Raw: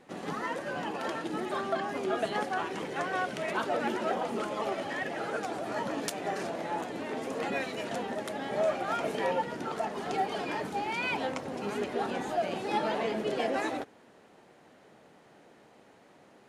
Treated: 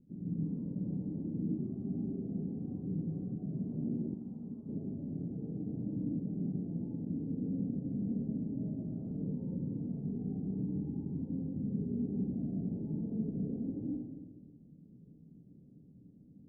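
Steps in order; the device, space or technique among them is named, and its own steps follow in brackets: club heard from the street (limiter -25 dBFS, peak gain reduction 10 dB; LPF 220 Hz 24 dB/oct; reverb RT60 1.4 s, pre-delay 86 ms, DRR -6 dB); 4.14–4.69 resonant low shelf 750 Hz -7.5 dB, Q 1.5; gain +3.5 dB

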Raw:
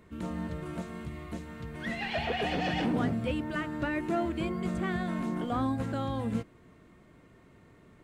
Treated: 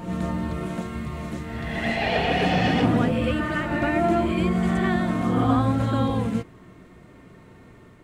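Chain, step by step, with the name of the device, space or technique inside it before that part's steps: reverse reverb (reverse; reverb RT60 1.3 s, pre-delay 60 ms, DRR 0.5 dB; reverse); gain +6 dB

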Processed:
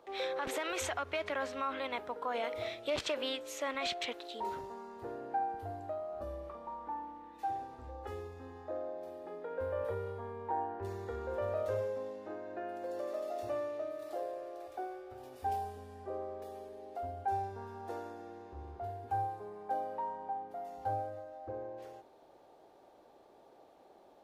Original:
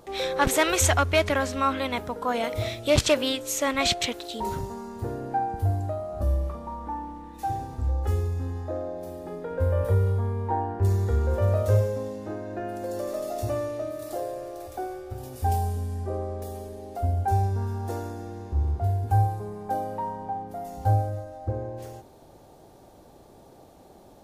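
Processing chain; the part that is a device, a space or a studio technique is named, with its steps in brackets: DJ mixer with the lows and highs turned down (three-band isolator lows -18 dB, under 310 Hz, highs -13 dB, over 4100 Hz; limiter -19 dBFS, peak gain reduction 11 dB); gain -6.5 dB

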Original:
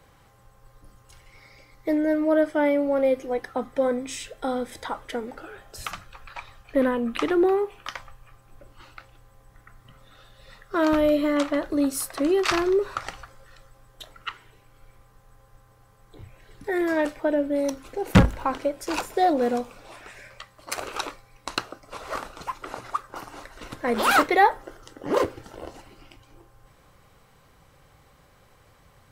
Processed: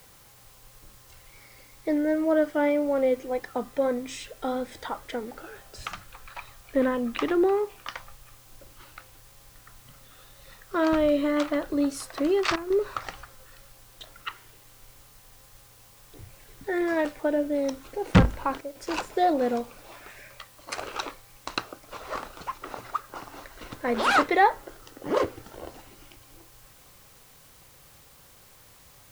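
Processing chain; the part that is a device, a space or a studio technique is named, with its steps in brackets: worn cassette (LPF 7000 Hz; wow and flutter; level dips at 12.56/18.61, 0.141 s -10 dB; white noise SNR 26 dB); gain -2 dB

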